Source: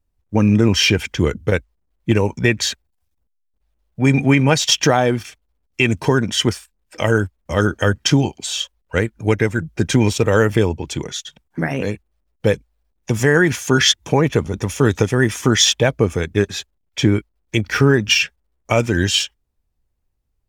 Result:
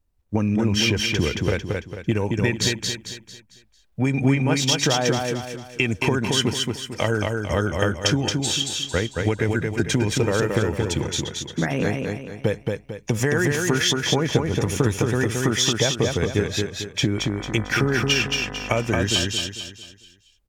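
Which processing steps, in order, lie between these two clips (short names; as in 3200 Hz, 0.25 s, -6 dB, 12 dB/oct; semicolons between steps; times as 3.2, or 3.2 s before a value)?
compressor, threshold -18 dBFS, peak gain reduction 10 dB; 17.16–18.81 buzz 50 Hz, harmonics 40, -37 dBFS -3 dB/oct; feedback echo 0.224 s, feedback 39%, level -3.5 dB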